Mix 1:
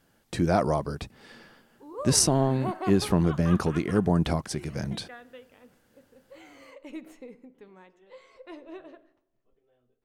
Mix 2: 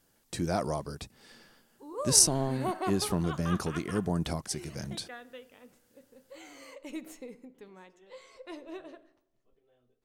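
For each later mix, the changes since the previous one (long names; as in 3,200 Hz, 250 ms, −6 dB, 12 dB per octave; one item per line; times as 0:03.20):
speech −7.0 dB
master: add bass and treble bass 0 dB, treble +10 dB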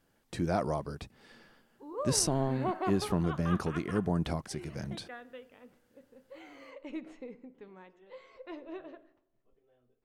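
background: add high-frequency loss of the air 100 metres
master: add bass and treble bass 0 dB, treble −10 dB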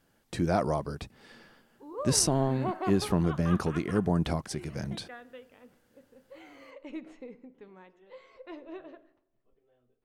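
speech +3.5 dB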